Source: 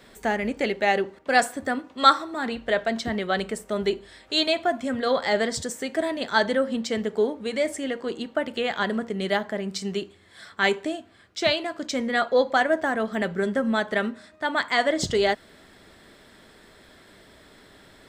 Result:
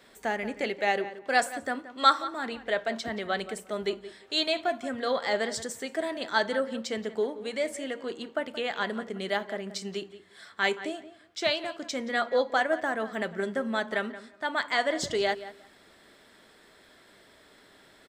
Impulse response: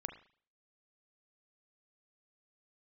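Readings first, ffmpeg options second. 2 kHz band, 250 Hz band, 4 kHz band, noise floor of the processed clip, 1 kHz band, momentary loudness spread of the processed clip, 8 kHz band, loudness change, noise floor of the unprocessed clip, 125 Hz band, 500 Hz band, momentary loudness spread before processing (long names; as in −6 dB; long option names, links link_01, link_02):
−4.0 dB, −7.5 dB, −4.0 dB, −58 dBFS, −4.5 dB, 9 LU, −4.0 dB, −5.0 dB, −53 dBFS, −9.0 dB, −5.0 dB, 8 LU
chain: -filter_complex "[0:a]lowshelf=frequency=190:gain=-10,asplit=2[link_01][link_02];[link_02]adelay=176,lowpass=frequency=2800:poles=1,volume=-14dB,asplit=2[link_03][link_04];[link_04]adelay=176,lowpass=frequency=2800:poles=1,volume=0.18[link_05];[link_03][link_05]amix=inputs=2:normalize=0[link_06];[link_01][link_06]amix=inputs=2:normalize=0,volume=-4dB"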